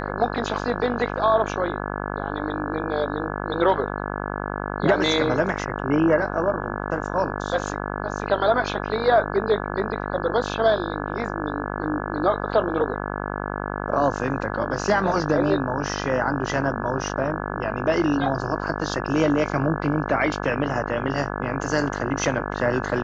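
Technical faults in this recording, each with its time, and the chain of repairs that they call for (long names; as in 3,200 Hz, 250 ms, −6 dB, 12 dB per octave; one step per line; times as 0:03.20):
mains buzz 50 Hz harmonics 34 −29 dBFS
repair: hum removal 50 Hz, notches 34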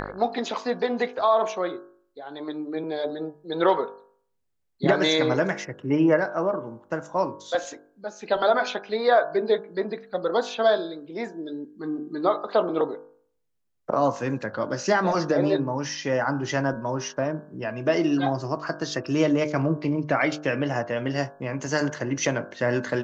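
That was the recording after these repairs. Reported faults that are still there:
none of them is left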